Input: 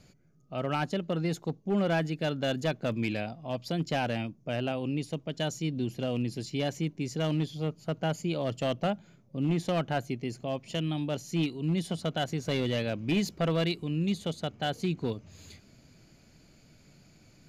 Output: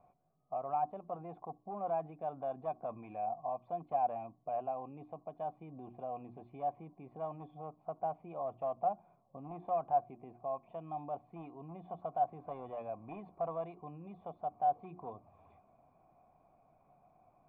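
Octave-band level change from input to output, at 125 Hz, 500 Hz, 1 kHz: −21.0, −7.0, +2.0 decibels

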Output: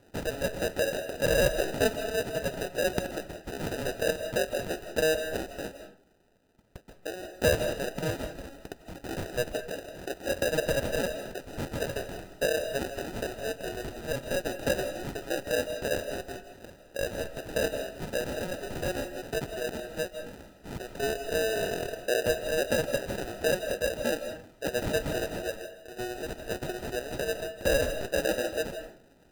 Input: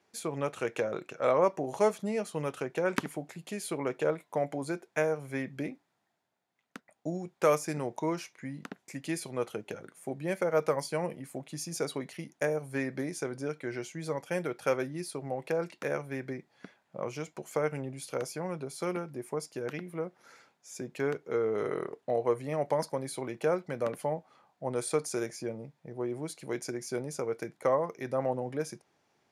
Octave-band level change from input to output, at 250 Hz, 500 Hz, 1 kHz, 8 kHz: −0.5, +2.0, −2.5, +4.5 decibels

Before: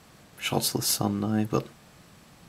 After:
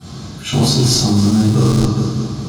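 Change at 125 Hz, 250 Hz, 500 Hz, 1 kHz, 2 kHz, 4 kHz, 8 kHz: +20.0, +15.0, +10.0, +8.0, +5.5, +12.5, +9.0 decibels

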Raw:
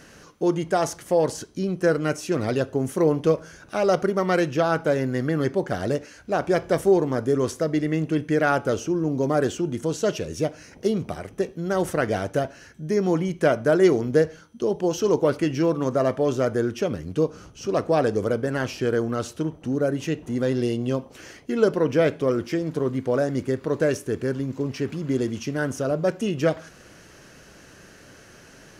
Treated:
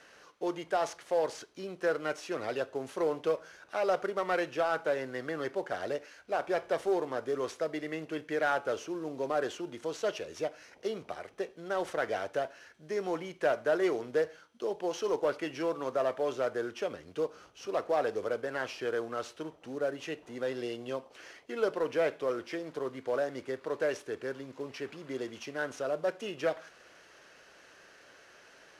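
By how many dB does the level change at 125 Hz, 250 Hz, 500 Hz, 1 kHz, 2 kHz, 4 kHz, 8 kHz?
−22.5, −15.5, −9.0, −6.5, −6.0, −7.0, −12.0 decibels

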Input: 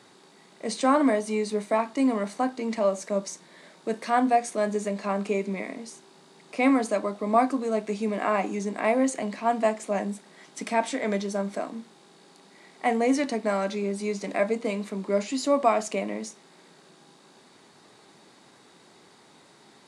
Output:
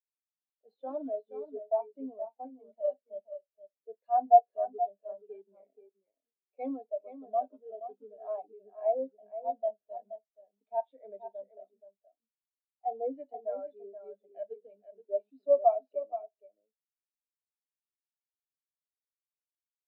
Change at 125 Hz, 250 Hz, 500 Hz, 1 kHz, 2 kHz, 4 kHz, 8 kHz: can't be measured, −21.0 dB, −6.0 dB, −4.0 dB, below −35 dB, below −40 dB, below −40 dB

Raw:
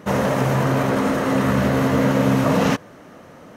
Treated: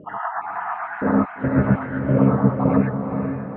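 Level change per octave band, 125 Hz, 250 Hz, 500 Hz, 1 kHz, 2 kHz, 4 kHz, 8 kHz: −0.5 dB, 0.0 dB, −4.0 dB, −2.0 dB, −4.5 dB, below −25 dB, below −40 dB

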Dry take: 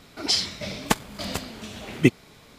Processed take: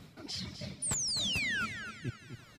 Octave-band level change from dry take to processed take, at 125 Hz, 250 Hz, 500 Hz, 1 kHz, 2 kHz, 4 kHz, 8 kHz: −11.5, −17.5, −20.5, −11.5, −3.0, −7.0, −1.5 decibels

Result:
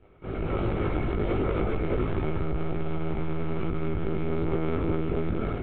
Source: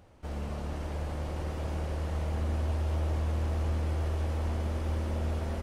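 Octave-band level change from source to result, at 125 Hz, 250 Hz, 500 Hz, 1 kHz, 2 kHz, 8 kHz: +0.5 dB, +10.0 dB, +10.0 dB, +5.0 dB, +6.0 dB, below −30 dB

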